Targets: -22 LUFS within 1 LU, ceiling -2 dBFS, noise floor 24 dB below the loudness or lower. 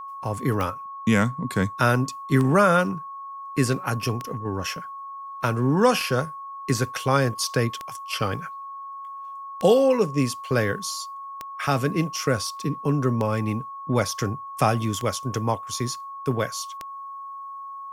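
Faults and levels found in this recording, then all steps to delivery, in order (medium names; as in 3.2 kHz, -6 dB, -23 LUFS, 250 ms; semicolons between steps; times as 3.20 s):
clicks found 10; steady tone 1.1 kHz; tone level -34 dBFS; loudness -24.5 LUFS; peak level -5.5 dBFS; loudness target -22.0 LUFS
-> de-click; band-stop 1.1 kHz, Q 30; trim +2.5 dB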